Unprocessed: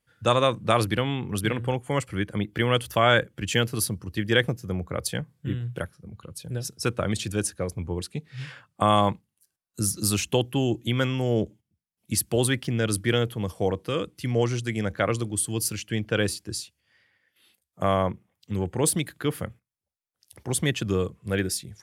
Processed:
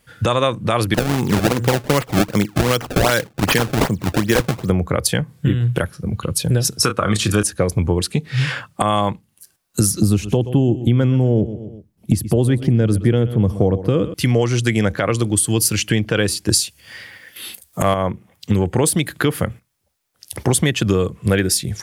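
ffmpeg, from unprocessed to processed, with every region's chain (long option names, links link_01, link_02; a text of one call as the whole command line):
ffmpeg -i in.wav -filter_complex "[0:a]asettb=1/sr,asplit=3[link_01][link_02][link_03];[link_01]atrim=end=0.944[link_04];[link_02]atrim=start=0.94:end=4.7,asetpts=PTS-STARTPTS,afade=type=in:duration=0.004:curve=qsin,afade=type=out:start_time=3.756:duration=0.004:curve=qsin,highpass=110,acrusher=samples=26:mix=1:aa=0.000001:lfo=1:lforange=41.6:lforate=2.6[link_05];[link_03]atrim=start=4.696[link_06];[link_04][link_05]acrossfade=duration=0.004:curve1=hsin:curve2=qsin[link_07];[link_07][link_06]acrossfade=duration=0.004:curve1=qsin:curve2=hsin,asettb=1/sr,asplit=3[link_08][link_09][link_10];[link_08]atrim=end=6.804[link_11];[link_09]atrim=start=6.8:end=7.43,asetpts=PTS-STARTPTS,afade=type=in:duration=0.004:curve=qsin,afade=type=out:start_time=0.626:duration=0.004:curve=qsin,highpass=45,equalizer=frequency=1200:width=3.3:gain=11.5,asplit=2[link_12][link_13];[link_13]adelay=29,volume=-9dB[link_14];[link_12][link_14]amix=inputs=2:normalize=0,atrim=end_sample=27783[link_15];[link_10]atrim=start=7.426[link_16];[link_11][link_15]acrossfade=duration=0.004:curve1=hsin:curve2=qsin[link_17];[link_17][link_16]acrossfade=duration=0.004:curve1=qsin:curve2=hsin,asettb=1/sr,asplit=3[link_18][link_19][link_20];[link_18]atrim=end=10.014[link_21];[link_19]atrim=start=10.01:end=14.14,asetpts=PTS-STARTPTS,afade=type=in:duration=0.004:curve=qsin,afade=type=out:start_time=4.126:duration=0.004:curve=qsin,tiltshelf=frequency=710:gain=9,aecho=1:1:124|248|372:0.141|0.0396|0.0111,atrim=end_sample=182133[link_22];[link_20]atrim=start=14.136[link_23];[link_21][link_22]acrossfade=duration=0.004:curve1=hsin:curve2=qsin[link_24];[link_24][link_23]acrossfade=duration=0.004:curve1=qsin:curve2=hsin,asettb=1/sr,asplit=3[link_25][link_26][link_27];[link_25]atrim=end=16.494[link_28];[link_26]atrim=start=16.49:end=17.94,asetpts=PTS-STARTPTS,afade=type=in:duration=0.004:curve=qsin,afade=type=out:start_time=1.446:duration=0.004:curve=qsin,highshelf=frequency=5700:gain=8,acontrast=64[link_29];[link_27]atrim=start=17.936[link_30];[link_28][link_29]acrossfade=duration=0.004:curve1=hsin:curve2=qsin[link_31];[link_31][link_30]acrossfade=duration=0.004:curve1=qsin:curve2=hsin,acompressor=threshold=-33dB:ratio=6,alimiter=level_in=22.5dB:limit=-1dB:release=50:level=0:latency=1,volume=-3dB" out.wav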